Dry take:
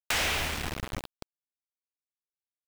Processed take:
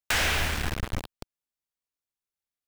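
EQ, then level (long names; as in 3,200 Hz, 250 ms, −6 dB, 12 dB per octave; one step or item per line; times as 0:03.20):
low-shelf EQ 110 Hz +7.5 dB
dynamic equaliser 1,600 Hz, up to +5 dB, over −46 dBFS, Q 4
+1.5 dB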